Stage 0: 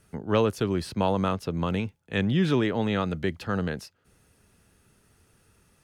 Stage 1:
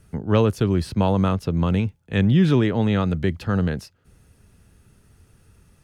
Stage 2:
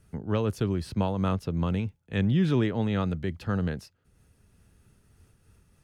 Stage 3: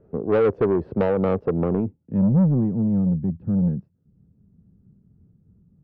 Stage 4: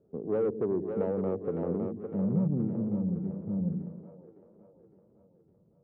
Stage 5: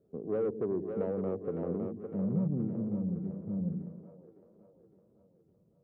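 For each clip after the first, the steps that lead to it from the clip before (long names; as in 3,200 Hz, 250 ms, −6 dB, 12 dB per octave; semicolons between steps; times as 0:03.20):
low-shelf EQ 180 Hz +11.5 dB; level +1.5 dB
amplitude modulation by smooth noise, depth 55%; level −4 dB
low-pass filter sweep 470 Hz → 180 Hz, 0:01.58–0:02.30; mid-hump overdrive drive 22 dB, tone 2,900 Hz, clips at −10.5 dBFS
resonant band-pass 320 Hz, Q 0.61; echo with a time of its own for lows and highs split 360 Hz, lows 103 ms, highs 559 ms, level −6 dB; level −9 dB
notch filter 870 Hz, Q 14; level −3 dB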